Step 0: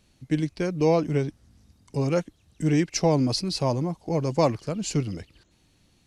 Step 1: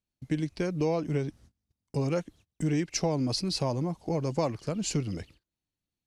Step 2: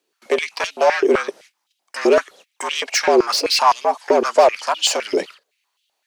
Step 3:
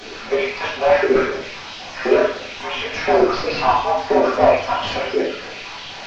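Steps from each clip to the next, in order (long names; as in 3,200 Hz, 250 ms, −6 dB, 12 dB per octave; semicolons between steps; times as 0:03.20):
noise gate −50 dBFS, range −28 dB; downward compressor 2.5 to 1, threshold −27 dBFS, peak gain reduction 8 dB
frequency shifter +97 Hz; mid-hump overdrive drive 20 dB, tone 7,300 Hz, clips at −15 dBFS; high-pass on a step sequencer 7.8 Hz 390–3,100 Hz; level +5 dB
linear delta modulator 32 kbit/s, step −26 dBFS; convolution reverb RT60 0.60 s, pre-delay 4 ms, DRR −8.5 dB; level −8.5 dB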